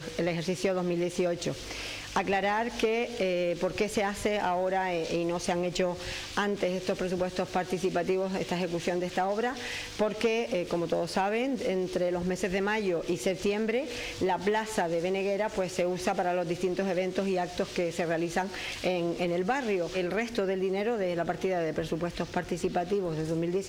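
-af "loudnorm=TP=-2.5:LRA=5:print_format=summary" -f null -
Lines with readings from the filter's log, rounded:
Input Integrated:    -30.1 LUFS
Input True Peak:     -17.7 dBTP
Input LRA:             1.5 LU
Input Threshold:     -40.1 LUFS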